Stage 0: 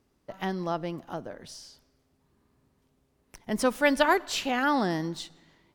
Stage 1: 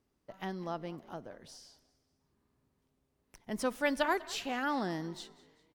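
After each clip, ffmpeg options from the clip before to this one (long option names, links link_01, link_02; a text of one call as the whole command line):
ffmpeg -i in.wav -filter_complex "[0:a]asplit=4[link_01][link_02][link_03][link_04];[link_02]adelay=196,afreqshift=47,volume=-20.5dB[link_05];[link_03]adelay=392,afreqshift=94,volume=-27.6dB[link_06];[link_04]adelay=588,afreqshift=141,volume=-34.8dB[link_07];[link_01][link_05][link_06][link_07]amix=inputs=4:normalize=0,volume=-8dB" out.wav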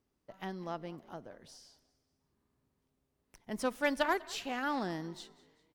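ffmpeg -i in.wav -af "aeval=exprs='0.141*(cos(1*acos(clip(val(0)/0.141,-1,1)))-cos(1*PI/2))+0.00501*(cos(7*acos(clip(val(0)/0.141,-1,1)))-cos(7*PI/2))':channel_layout=same" out.wav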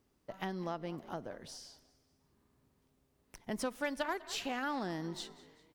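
ffmpeg -i in.wav -af "acompressor=threshold=-42dB:ratio=3,volume=6dB" out.wav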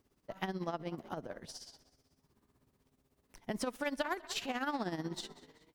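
ffmpeg -i in.wav -af "tremolo=f=16:d=0.7,volume=3.5dB" out.wav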